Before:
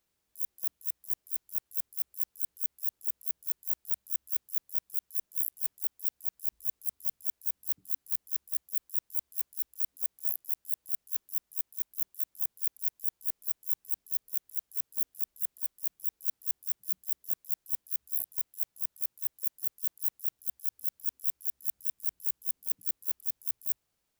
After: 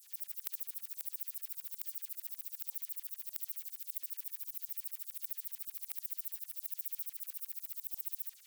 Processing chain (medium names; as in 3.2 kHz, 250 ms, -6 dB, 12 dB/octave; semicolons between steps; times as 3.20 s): LFO high-pass saw down 5.2 Hz 560–5400 Hz; wide varispeed 2.86×; harmonic-percussive split harmonic +9 dB; trim +18 dB